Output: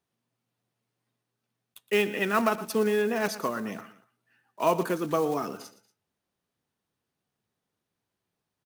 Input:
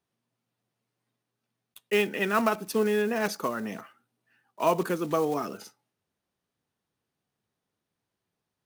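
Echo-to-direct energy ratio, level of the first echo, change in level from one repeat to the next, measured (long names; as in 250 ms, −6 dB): −15.0 dB, −16.0 dB, −7.0 dB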